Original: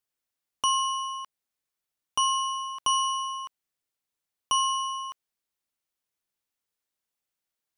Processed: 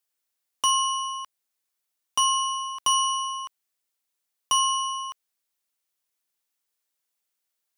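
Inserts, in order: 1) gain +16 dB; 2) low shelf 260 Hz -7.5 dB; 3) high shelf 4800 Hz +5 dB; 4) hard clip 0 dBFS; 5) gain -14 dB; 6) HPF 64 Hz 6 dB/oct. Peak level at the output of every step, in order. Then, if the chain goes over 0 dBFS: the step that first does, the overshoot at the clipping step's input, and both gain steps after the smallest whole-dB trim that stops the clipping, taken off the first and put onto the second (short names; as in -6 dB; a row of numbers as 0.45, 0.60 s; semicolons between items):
+2.0, +2.0, +3.5, 0.0, -14.0, -13.5 dBFS; step 1, 3.5 dB; step 1 +12 dB, step 5 -10 dB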